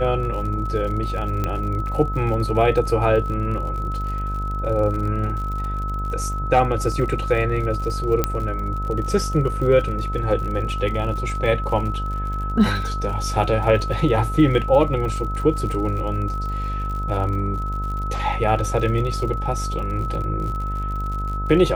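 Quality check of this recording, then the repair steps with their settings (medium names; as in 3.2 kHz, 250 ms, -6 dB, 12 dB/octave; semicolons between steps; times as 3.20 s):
buzz 50 Hz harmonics 30 -26 dBFS
crackle 60 per s -30 dBFS
whine 1.3 kHz -28 dBFS
1.44 s: pop -11 dBFS
8.24 s: pop -5 dBFS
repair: de-click; band-stop 1.3 kHz, Q 30; de-hum 50 Hz, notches 30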